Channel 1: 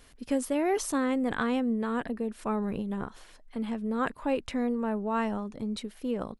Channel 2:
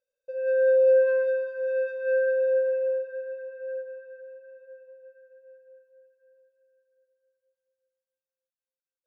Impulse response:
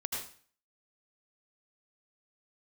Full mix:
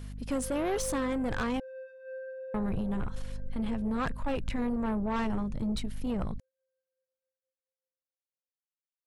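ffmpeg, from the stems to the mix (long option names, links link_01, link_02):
-filter_complex "[0:a]asubboost=boost=9.5:cutoff=110,aeval=exprs='val(0)+0.00891*(sin(2*PI*50*n/s)+sin(2*PI*2*50*n/s)/2+sin(2*PI*3*50*n/s)/3+sin(2*PI*4*50*n/s)/4+sin(2*PI*5*50*n/s)/5)':channel_layout=same,volume=2dB,asplit=3[link_01][link_02][link_03];[link_01]atrim=end=1.6,asetpts=PTS-STARTPTS,afade=type=out:start_time=1.596:duration=0.004:curve=hsin[link_04];[link_02]atrim=start=1.6:end=2.54,asetpts=PTS-STARTPTS,volume=0[link_05];[link_03]atrim=start=2.54,asetpts=PTS-STARTPTS,afade=type=in:duration=0.004:curve=hsin[link_06];[link_04][link_05][link_06]concat=n=3:v=0:a=1[link_07];[1:a]volume=-17.5dB[link_08];[link_07][link_08]amix=inputs=2:normalize=0,asoftclip=type=tanh:threshold=-26dB"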